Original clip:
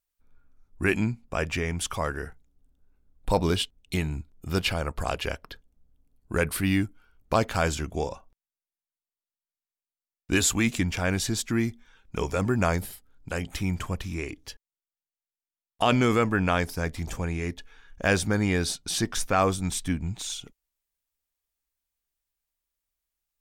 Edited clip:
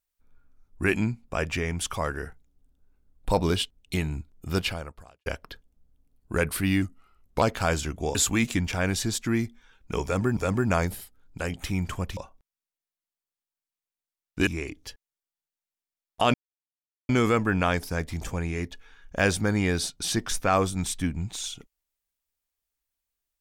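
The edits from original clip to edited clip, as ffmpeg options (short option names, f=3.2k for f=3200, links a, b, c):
-filter_complex "[0:a]asplit=9[a][b][c][d][e][f][g][h][i];[a]atrim=end=5.26,asetpts=PTS-STARTPTS,afade=t=out:st=4.59:d=0.67:c=qua[j];[b]atrim=start=5.26:end=6.824,asetpts=PTS-STARTPTS,afade=t=in:d=0.004:c=hsin[k];[c]atrim=start=6.82:end=7.36,asetpts=PTS-STARTPTS,asetrate=39690,aresample=44100[l];[d]atrim=start=7.356:end=8.092[m];[e]atrim=start=10.388:end=12.612[n];[f]atrim=start=12.278:end=14.082[o];[g]atrim=start=8.088:end=10.392[p];[h]atrim=start=14.078:end=15.95,asetpts=PTS-STARTPTS,afade=t=out:st=1.868:d=0.004:c=hsin,apad=pad_dur=0.75[q];[i]atrim=start=15.95,asetpts=PTS-STARTPTS,afade=t=in:d=0.004:c=hsin[r];[j][k]concat=n=2:v=0:a=1[s];[s][l]acrossfade=d=0.004:c1=hsin:c2=hsin[t];[t][m]acrossfade=d=0.004:c1=hsin:c2=hsin[u];[u][n]acrossfade=d=0.004:c1=hsin:c2=hsin[v];[v][o]acrossfade=d=0.004:c1=hsin:c2=hsin[w];[w][p]acrossfade=d=0.004:c1=hsin:c2=hsin[x];[q][r]concat=n=2:v=0:a=1[y];[x][y]acrossfade=d=0.004:c1=hsin:c2=hsin"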